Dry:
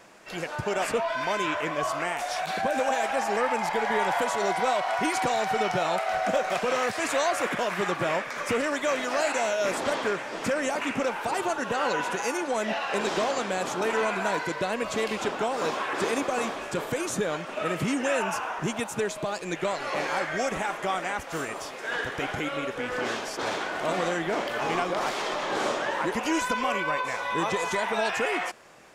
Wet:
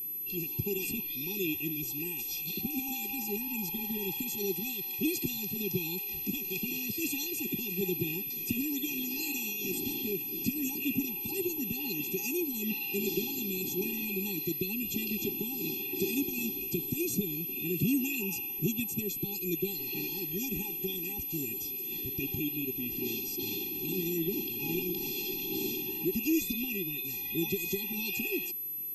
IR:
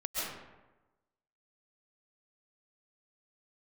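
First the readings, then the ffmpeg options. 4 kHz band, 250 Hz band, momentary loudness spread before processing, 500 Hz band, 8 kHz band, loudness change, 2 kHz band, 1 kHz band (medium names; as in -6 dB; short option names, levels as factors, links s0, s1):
-4.5 dB, 0.0 dB, 5 LU, -11.0 dB, -3.0 dB, -4.0 dB, -10.5 dB, -25.5 dB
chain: -af "asuperstop=centerf=1300:order=12:qfactor=0.79,aeval=exprs='val(0)+0.0282*sin(2*PI*12000*n/s)':c=same,afftfilt=real='re*eq(mod(floor(b*sr/1024/400),2),0)':imag='im*eq(mod(floor(b*sr/1024/400),2),0)':win_size=1024:overlap=0.75"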